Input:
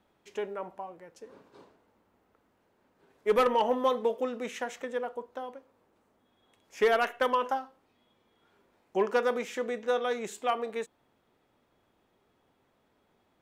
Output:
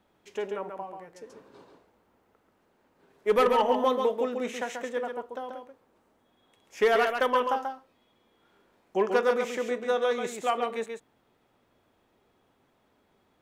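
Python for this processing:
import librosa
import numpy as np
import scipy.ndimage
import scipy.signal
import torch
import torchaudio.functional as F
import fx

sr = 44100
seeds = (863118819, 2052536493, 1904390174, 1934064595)

y = x + 10.0 ** (-5.5 / 20.0) * np.pad(x, (int(136 * sr / 1000.0), 0))[:len(x)]
y = y * 10.0 ** (1.5 / 20.0)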